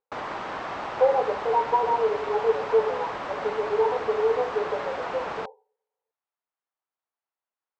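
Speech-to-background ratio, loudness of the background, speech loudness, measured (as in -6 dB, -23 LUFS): 7.0 dB, -33.0 LUFS, -26.0 LUFS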